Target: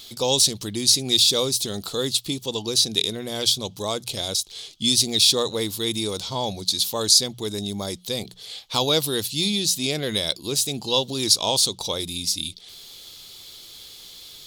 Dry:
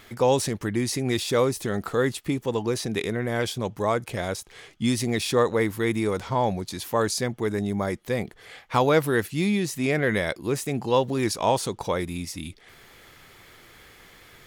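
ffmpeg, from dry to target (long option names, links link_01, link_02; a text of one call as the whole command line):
ffmpeg -i in.wav -af "highshelf=frequency=2700:width_type=q:width=3:gain=13,bandreject=frequency=60:width_type=h:width=6,bandreject=frequency=120:width_type=h:width=6,bandreject=frequency=180:width_type=h:width=6,volume=-3dB" out.wav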